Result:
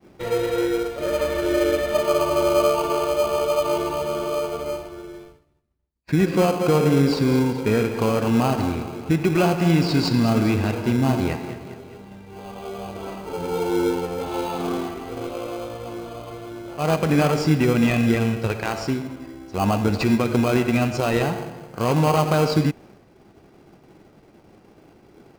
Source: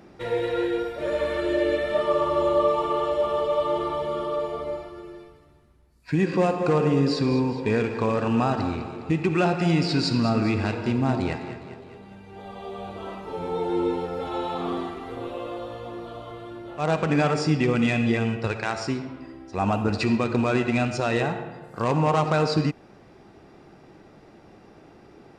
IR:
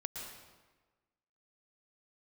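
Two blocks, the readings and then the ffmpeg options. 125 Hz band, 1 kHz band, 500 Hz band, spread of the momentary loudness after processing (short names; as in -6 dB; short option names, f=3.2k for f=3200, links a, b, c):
+4.0 dB, +1.5 dB, +3.0 dB, 16 LU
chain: -filter_complex "[0:a]agate=range=-33dB:threshold=-45dB:ratio=3:detection=peak,asplit=2[a][b];[b]acrusher=samples=24:mix=1:aa=0.000001,volume=-5dB[c];[a][c]amix=inputs=2:normalize=0"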